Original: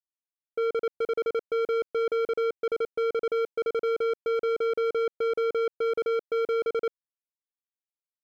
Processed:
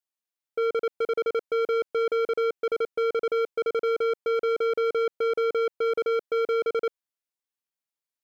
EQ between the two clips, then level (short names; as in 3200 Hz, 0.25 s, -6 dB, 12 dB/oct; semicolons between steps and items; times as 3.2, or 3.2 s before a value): low shelf 270 Hz -6 dB; +3.0 dB